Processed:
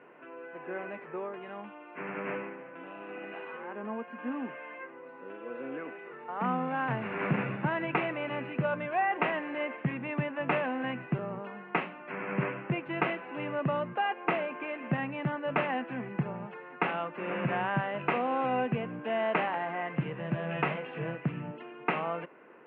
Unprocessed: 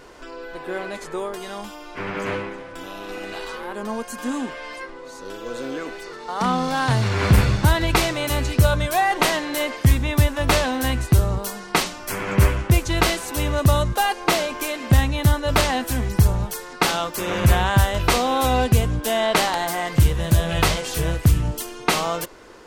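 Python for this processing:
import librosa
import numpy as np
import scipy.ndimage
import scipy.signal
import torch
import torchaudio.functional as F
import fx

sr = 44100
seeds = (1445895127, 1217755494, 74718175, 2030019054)

y = scipy.signal.sosfilt(scipy.signal.cheby1(5, 1.0, [140.0, 2700.0], 'bandpass', fs=sr, output='sos'), x)
y = y * librosa.db_to_amplitude(-8.5)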